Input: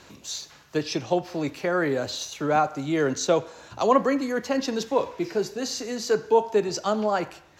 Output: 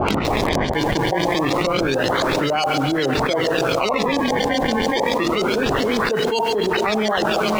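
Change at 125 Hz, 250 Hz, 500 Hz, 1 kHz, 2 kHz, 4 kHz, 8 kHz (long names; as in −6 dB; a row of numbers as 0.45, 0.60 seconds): +9.5, +6.5, +4.5, +6.5, +11.0, +10.5, +1.0 decibels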